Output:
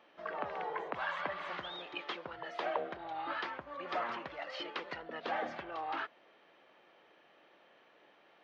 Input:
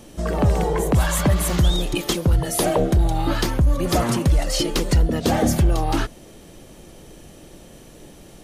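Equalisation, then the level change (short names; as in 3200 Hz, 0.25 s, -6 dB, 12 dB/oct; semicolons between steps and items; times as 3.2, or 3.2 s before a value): HPF 1300 Hz 12 dB/oct; air absorption 260 m; tape spacing loss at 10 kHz 34 dB; +1.0 dB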